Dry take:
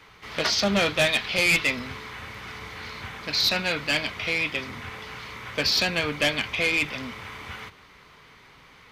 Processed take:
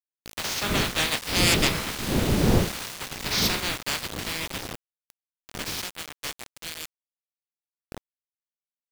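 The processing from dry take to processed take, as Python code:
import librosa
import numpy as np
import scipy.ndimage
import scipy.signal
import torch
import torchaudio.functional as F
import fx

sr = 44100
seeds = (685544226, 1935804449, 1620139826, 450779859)

y = fx.spec_clip(x, sr, under_db=20)
y = fx.dmg_wind(y, sr, seeds[0], corner_hz=290.0, level_db=-31.0)
y = fx.doppler_pass(y, sr, speed_mps=5, closest_m=2.7, pass_at_s=2.37)
y = fx.quant_dither(y, sr, seeds[1], bits=6, dither='none')
y = y * librosa.db_to_amplitude(5.0)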